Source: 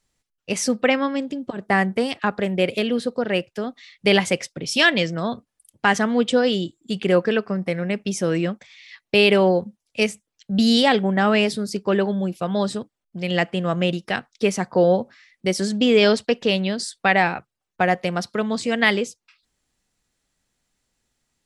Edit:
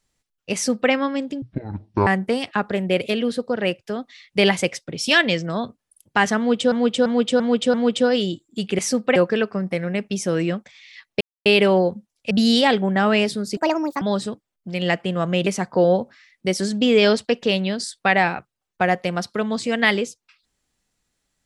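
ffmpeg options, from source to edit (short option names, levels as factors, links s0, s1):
-filter_complex "[0:a]asplit=14[s0][s1][s2][s3][s4][s5][s6][s7][s8][s9][s10][s11][s12][s13];[s0]atrim=end=1.424[s14];[s1]atrim=start=1.42:end=1.75,asetpts=PTS-STARTPTS,asetrate=22491,aresample=44100,atrim=end_sample=28535,asetpts=PTS-STARTPTS[s15];[s2]atrim=start=1.746:end=6.402[s16];[s3]atrim=start=6.058:end=6.402[s17];[s4]atrim=start=6.058:end=6.402[s18];[s5]atrim=start=6.058:end=6.402[s19];[s6]atrim=start=6.058:end=7.112[s20];[s7]atrim=start=0.538:end=0.912[s21];[s8]atrim=start=7.108:end=9.16,asetpts=PTS-STARTPTS,afade=t=out:st=2.048:d=0.004:c=hsin,apad=pad_dur=0.25[s22];[s9]atrim=start=9.16:end=10.012,asetpts=PTS-STARTPTS,afade=t=in:d=0.004:c=hsin[s23];[s10]atrim=start=10.518:end=11.784[s24];[s11]atrim=start=11.78:end=12.5,asetpts=PTS-STARTPTS,asetrate=71001,aresample=44100[s25];[s12]atrim=start=12.496:end=13.952[s26];[s13]atrim=start=14.458[s27];[s14][s15]acrossfade=d=0.004:c1=hsin:c2=hsin[s28];[s28][s16]acrossfade=d=0.004:c1=hsin:c2=hsin[s29];[s29][s17]acrossfade=d=0.004:c1=hsin:c2=hsin[s30];[s30][s18]acrossfade=d=0.004:c1=hsin:c2=hsin[s31];[s31][s19]acrossfade=d=0.004:c1=hsin:c2=hsin[s32];[s32][s20]acrossfade=d=0.004:c1=hsin:c2=hsin[s33];[s33][s21]acrossfade=d=0.004:c1=hsin:c2=hsin[s34];[s22][s23]concat=n=2:v=0:a=1[s35];[s34][s35]acrossfade=d=0.004:c1=hsin:c2=hsin[s36];[s36][s24]acrossfade=d=0.004:c1=hsin:c2=hsin[s37];[s37][s25]acrossfade=d=0.004:c1=hsin:c2=hsin[s38];[s38][s26]acrossfade=d=0.004:c1=hsin:c2=hsin[s39];[s39][s27]acrossfade=d=0.004:c1=hsin:c2=hsin"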